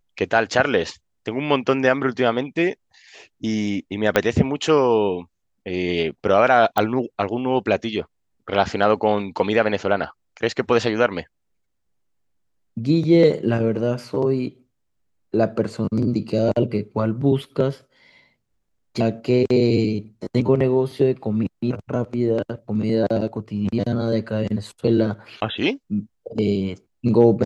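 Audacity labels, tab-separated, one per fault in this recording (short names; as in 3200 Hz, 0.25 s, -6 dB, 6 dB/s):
4.160000	4.160000	pop -3 dBFS
6.780000	6.780000	pop -7 dBFS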